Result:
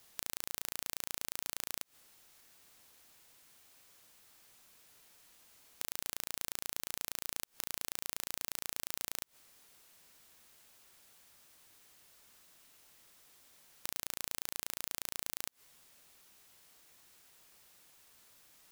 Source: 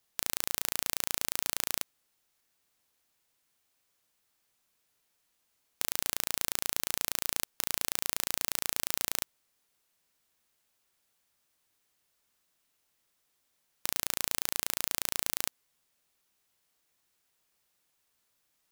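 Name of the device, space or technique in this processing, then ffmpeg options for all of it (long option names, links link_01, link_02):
de-esser from a sidechain: -filter_complex "[0:a]asplit=2[link_01][link_02];[link_02]highpass=frequency=4300:width=0.5412,highpass=frequency=4300:width=1.3066,apad=whole_len=825519[link_03];[link_01][link_03]sidechaincompress=threshold=-49dB:ratio=4:attack=2.1:release=72,volume=13dB"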